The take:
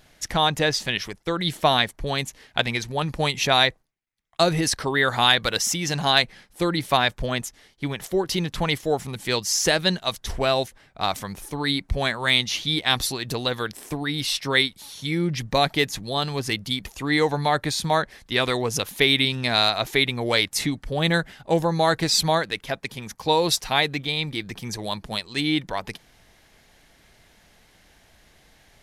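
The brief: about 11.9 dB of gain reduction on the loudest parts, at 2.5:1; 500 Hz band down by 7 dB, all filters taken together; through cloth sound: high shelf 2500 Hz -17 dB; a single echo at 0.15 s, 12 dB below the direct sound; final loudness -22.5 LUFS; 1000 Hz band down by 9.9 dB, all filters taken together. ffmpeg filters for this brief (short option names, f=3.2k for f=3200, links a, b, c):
-af "equalizer=f=500:t=o:g=-5.5,equalizer=f=1k:t=o:g=-8.5,acompressor=threshold=-33dB:ratio=2.5,highshelf=f=2.5k:g=-17,aecho=1:1:150:0.251,volume=15dB"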